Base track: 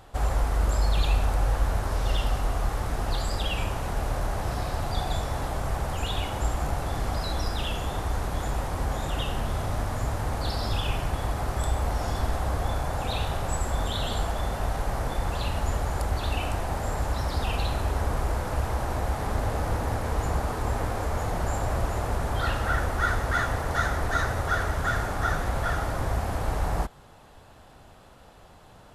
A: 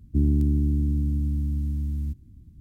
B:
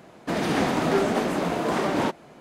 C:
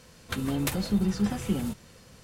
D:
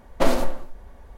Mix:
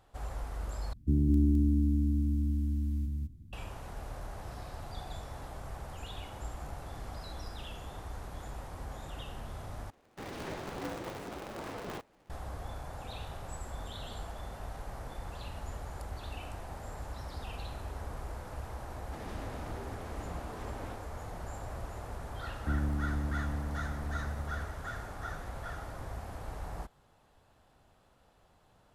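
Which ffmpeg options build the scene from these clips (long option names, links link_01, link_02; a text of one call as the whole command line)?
ffmpeg -i bed.wav -i cue0.wav -i cue1.wav -filter_complex "[1:a]asplit=2[link_01][link_02];[2:a]asplit=2[link_03][link_04];[0:a]volume=-14dB[link_05];[link_01]aecho=1:1:34.99|209.9:0.251|0.794[link_06];[link_03]aeval=exprs='val(0)*sgn(sin(2*PI*110*n/s))':channel_layout=same[link_07];[link_04]acompressor=threshold=-26dB:ratio=6:attack=3.2:release=140:knee=1:detection=peak[link_08];[link_05]asplit=3[link_09][link_10][link_11];[link_09]atrim=end=0.934[link_12];[link_06]atrim=end=2.6,asetpts=PTS-STARTPTS,volume=-5dB[link_13];[link_10]atrim=start=3.526:end=9.904[link_14];[link_07]atrim=end=2.4,asetpts=PTS-STARTPTS,volume=-17dB[link_15];[link_11]atrim=start=12.296[link_16];[link_08]atrim=end=2.4,asetpts=PTS-STARTPTS,volume=-17dB,afade=type=in:duration=0.004:curve=hsin,afade=type=out:start_time=2.396:duration=0.004:curve=hsin,adelay=18850[link_17];[link_02]atrim=end=2.6,asetpts=PTS-STARTPTS,volume=-11.5dB,afade=type=in:duration=0.004:curve=hsin,afade=type=out:start_time=2.596:duration=0.004:curve=hsin,adelay=22520[link_18];[link_12][link_13]acrossfade=duration=0.004:curve1=hsin:curve2=hsin[link_19];[link_19][link_14]acrossfade=duration=0.004:curve1=hsin:curve2=hsin[link_20];[link_20][link_15]acrossfade=duration=0.004:curve1=hsin:curve2=hsin[link_21];[link_21][link_16]acrossfade=duration=0.004:curve1=hsin:curve2=hsin[link_22];[link_22][link_17][link_18]amix=inputs=3:normalize=0" out.wav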